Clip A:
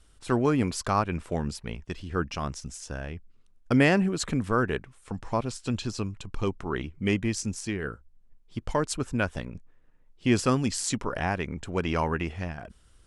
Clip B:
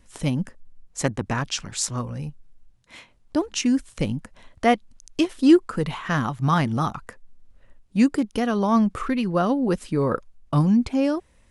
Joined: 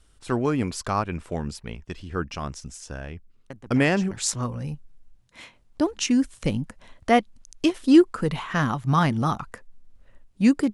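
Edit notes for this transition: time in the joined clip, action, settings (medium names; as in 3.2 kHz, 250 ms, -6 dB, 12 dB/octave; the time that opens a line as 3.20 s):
clip A
3.50 s: add clip B from 1.05 s 0.61 s -16.5 dB
4.11 s: go over to clip B from 1.66 s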